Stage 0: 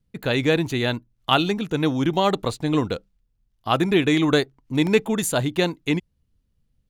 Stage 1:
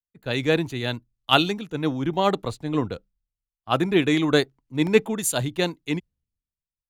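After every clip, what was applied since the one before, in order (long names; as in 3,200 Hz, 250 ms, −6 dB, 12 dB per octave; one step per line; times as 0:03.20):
multiband upward and downward expander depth 100%
level −2.5 dB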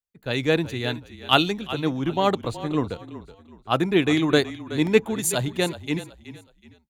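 echo with shifted repeats 373 ms, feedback 32%, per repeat −33 Hz, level −14.5 dB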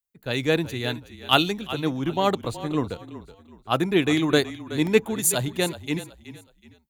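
high-shelf EQ 10,000 Hz +10.5 dB
level −1 dB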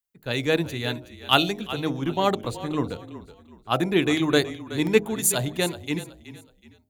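hum removal 51.63 Hz, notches 15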